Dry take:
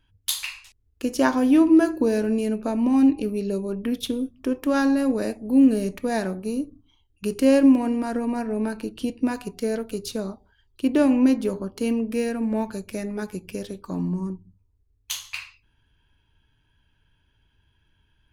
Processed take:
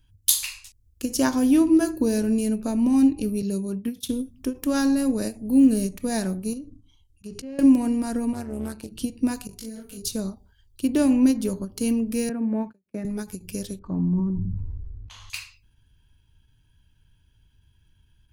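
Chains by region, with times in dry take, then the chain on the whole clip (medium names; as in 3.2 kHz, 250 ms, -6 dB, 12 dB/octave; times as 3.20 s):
3.42–4.09 s: high-pass 83 Hz + expander -31 dBFS + peaking EQ 620 Hz -3.5 dB 1.2 oct
6.53–7.59 s: low-pass that closes with the level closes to 2.5 kHz, closed at -18 dBFS + slow attack 143 ms + compression, threshold -32 dBFS
8.33–8.92 s: bass shelf 140 Hz -11 dB + AM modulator 140 Hz, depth 50% + loudspeaker Doppler distortion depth 0.21 ms
9.47–10.02 s: compression 5:1, threshold -34 dBFS + doubling 40 ms -4.5 dB + detune thickener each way 16 cents
12.29–13.05 s: gate -37 dBFS, range -31 dB + three-band isolator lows -21 dB, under 150 Hz, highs -23 dB, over 2.3 kHz
13.79–15.30 s: low-pass 1.3 kHz + decay stretcher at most 23 dB/s
whole clip: tone controls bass +11 dB, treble +14 dB; endings held to a fixed fall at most 270 dB/s; trim -5 dB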